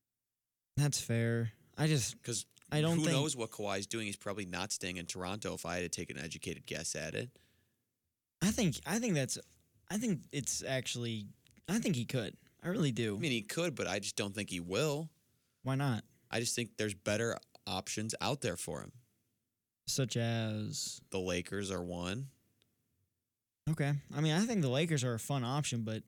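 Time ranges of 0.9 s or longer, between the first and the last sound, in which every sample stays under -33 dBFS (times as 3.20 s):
7.23–8.42 s
18.80–19.89 s
22.14–23.67 s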